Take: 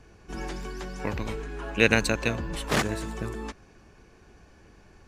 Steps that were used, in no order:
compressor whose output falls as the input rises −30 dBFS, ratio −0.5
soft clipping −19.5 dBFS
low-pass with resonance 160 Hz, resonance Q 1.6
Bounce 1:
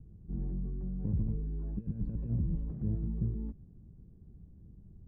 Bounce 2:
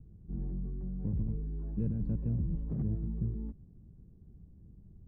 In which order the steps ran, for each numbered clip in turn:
soft clipping, then compressor whose output falls as the input rises, then low-pass with resonance
soft clipping, then low-pass with resonance, then compressor whose output falls as the input rises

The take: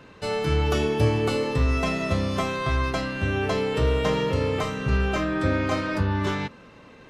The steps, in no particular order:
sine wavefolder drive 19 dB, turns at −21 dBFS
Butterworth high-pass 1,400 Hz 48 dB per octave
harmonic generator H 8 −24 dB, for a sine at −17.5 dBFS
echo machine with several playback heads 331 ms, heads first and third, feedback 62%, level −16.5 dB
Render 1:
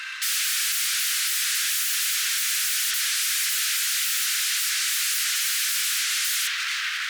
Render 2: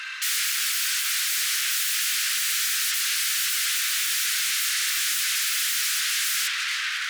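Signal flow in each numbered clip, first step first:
echo machine with several playback heads, then sine wavefolder, then harmonic generator, then Butterworth high-pass
harmonic generator, then echo machine with several playback heads, then sine wavefolder, then Butterworth high-pass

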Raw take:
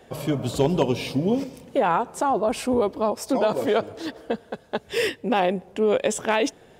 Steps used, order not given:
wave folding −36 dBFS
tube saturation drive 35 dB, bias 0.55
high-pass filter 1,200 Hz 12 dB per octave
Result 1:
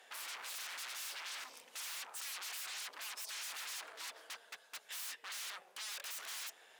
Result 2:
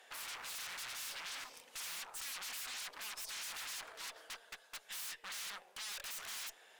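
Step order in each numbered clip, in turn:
wave folding, then tube saturation, then high-pass filter
wave folding, then high-pass filter, then tube saturation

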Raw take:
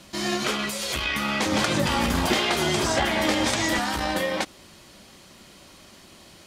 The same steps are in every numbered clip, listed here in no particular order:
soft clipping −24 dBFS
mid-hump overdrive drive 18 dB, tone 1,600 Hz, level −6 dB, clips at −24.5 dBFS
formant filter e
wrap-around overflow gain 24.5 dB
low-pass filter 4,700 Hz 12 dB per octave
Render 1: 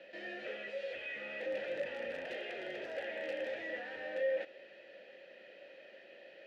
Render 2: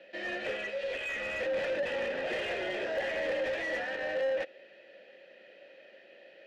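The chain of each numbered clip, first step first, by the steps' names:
low-pass filter, then mid-hump overdrive, then soft clipping, then wrap-around overflow, then formant filter
formant filter, then soft clipping, then low-pass filter, then wrap-around overflow, then mid-hump overdrive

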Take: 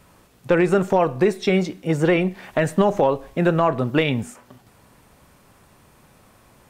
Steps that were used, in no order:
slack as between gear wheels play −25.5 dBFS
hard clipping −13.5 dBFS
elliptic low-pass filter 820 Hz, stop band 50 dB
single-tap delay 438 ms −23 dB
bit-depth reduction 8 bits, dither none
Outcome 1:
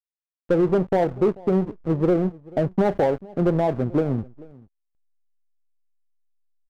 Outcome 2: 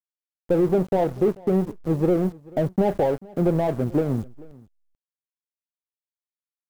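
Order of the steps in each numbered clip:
bit-depth reduction, then elliptic low-pass filter, then slack as between gear wheels, then single-tap delay, then hard clipping
hard clipping, then elliptic low-pass filter, then slack as between gear wheels, then bit-depth reduction, then single-tap delay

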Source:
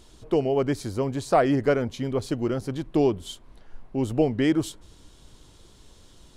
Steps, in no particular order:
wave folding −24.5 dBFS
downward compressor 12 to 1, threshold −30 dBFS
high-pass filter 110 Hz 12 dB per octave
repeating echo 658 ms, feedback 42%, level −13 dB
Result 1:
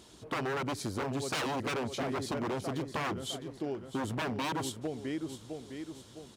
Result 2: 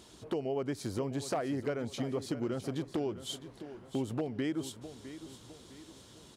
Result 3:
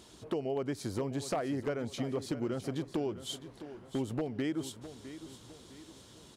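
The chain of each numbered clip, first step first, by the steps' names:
repeating echo, then wave folding, then downward compressor, then high-pass filter
downward compressor, then repeating echo, then wave folding, then high-pass filter
downward compressor, then high-pass filter, then wave folding, then repeating echo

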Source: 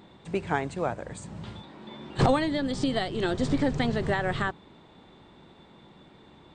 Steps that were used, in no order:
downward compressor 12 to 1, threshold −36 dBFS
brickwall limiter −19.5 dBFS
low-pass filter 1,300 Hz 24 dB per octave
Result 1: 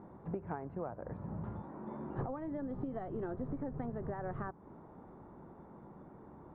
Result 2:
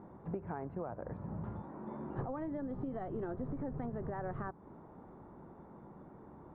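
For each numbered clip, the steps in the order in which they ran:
low-pass filter, then downward compressor, then brickwall limiter
low-pass filter, then brickwall limiter, then downward compressor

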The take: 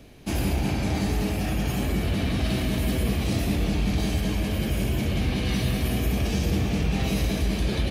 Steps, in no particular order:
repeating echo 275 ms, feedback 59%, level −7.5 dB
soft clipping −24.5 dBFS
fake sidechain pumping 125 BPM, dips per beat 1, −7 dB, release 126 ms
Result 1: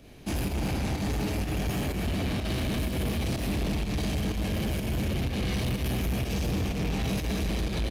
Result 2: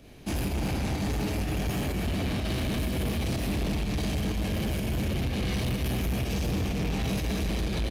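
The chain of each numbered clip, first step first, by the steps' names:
repeating echo, then soft clipping, then fake sidechain pumping
repeating echo, then fake sidechain pumping, then soft clipping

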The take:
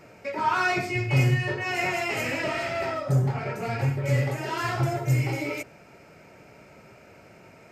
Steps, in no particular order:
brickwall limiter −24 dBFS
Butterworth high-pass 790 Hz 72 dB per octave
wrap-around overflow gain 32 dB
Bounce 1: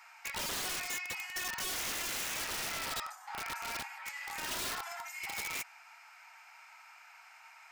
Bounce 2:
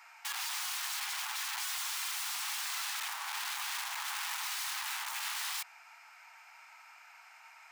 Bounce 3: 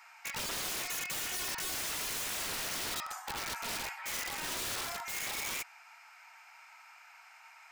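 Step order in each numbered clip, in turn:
brickwall limiter, then Butterworth high-pass, then wrap-around overflow
brickwall limiter, then wrap-around overflow, then Butterworth high-pass
Butterworth high-pass, then brickwall limiter, then wrap-around overflow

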